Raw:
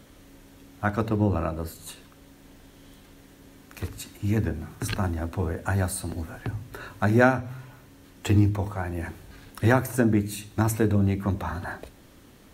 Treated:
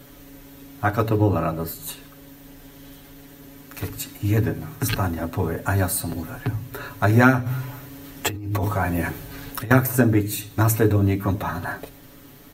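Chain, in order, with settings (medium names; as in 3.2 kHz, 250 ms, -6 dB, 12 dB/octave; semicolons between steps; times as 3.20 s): peaking EQ 14 kHz +14 dB 0.22 oct; comb 7.1 ms, depth 87%; 7.46–9.71 s: compressor with a negative ratio -28 dBFS, ratio -1; trim +3 dB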